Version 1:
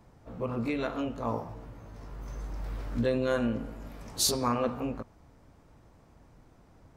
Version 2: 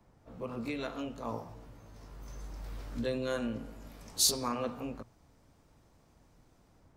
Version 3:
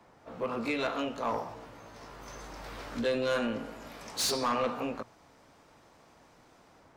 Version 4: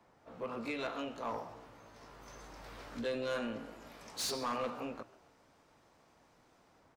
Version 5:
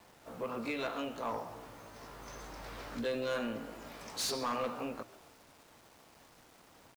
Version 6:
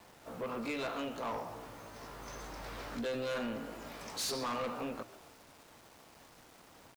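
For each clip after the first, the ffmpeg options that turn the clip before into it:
ffmpeg -i in.wav -filter_complex "[0:a]bandreject=frequency=60:width_type=h:width=6,bandreject=frequency=120:width_type=h:width=6,acrossover=split=170|860|3100[link_01][link_02][link_03][link_04];[link_04]dynaudnorm=framelen=130:gausssize=5:maxgain=7dB[link_05];[link_01][link_02][link_03][link_05]amix=inputs=4:normalize=0,volume=-6dB" out.wav
ffmpeg -i in.wav -filter_complex "[0:a]asplit=2[link_01][link_02];[link_02]highpass=frequency=720:poles=1,volume=23dB,asoftclip=type=tanh:threshold=-13.5dB[link_03];[link_01][link_03]amix=inputs=2:normalize=0,lowpass=frequency=3300:poles=1,volume=-6dB,volume=-4.5dB" out.wav
ffmpeg -i in.wav -filter_complex "[0:a]asplit=5[link_01][link_02][link_03][link_04][link_05];[link_02]adelay=134,afreqshift=60,volume=-21.5dB[link_06];[link_03]adelay=268,afreqshift=120,volume=-27.2dB[link_07];[link_04]adelay=402,afreqshift=180,volume=-32.9dB[link_08];[link_05]adelay=536,afreqshift=240,volume=-38.5dB[link_09];[link_01][link_06][link_07][link_08][link_09]amix=inputs=5:normalize=0,volume=-7dB" out.wav
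ffmpeg -i in.wav -filter_complex "[0:a]asplit=2[link_01][link_02];[link_02]acompressor=threshold=-47dB:ratio=6,volume=-2.5dB[link_03];[link_01][link_03]amix=inputs=2:normalize=0,acrusher=bits=9:mix=0:aa=0.000001" out.wav
ffmpeg -i in.wav -af "asoftclip=type=tanh:threshold=-34dB,volume=2dB" out.wav

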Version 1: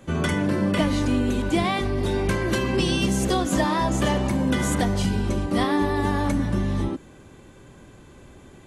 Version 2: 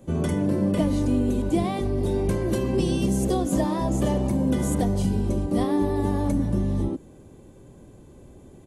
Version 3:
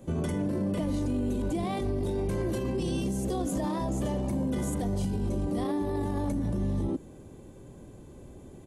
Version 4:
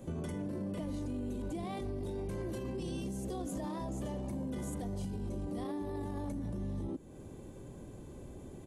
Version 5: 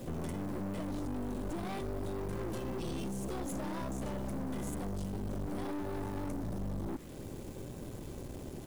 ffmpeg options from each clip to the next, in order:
ffmpeg -i in.wav -af "firequalizer=gain_entry='entry(510,0);entry(1400,-13);entry(10000,-1)':delay=0.05:min_phase=1" out.wav
ffmpeg -i in.wav -af "alimiter=limit=-23dB:level=0:latency=1:release=18" out.wav
ffmpeg -i in.wav -af "acompressor=threshold=-43dB:ratio=2" out.wav
ffmpeg -i in.wav -af "acrusher=bits=9:mix=0:aa=0.000001,aeval=exprs='(tanh(141*val(0)+0.6)-tanh(0.6))/141':channel_layout=same,volume=7.5dB" out.wav

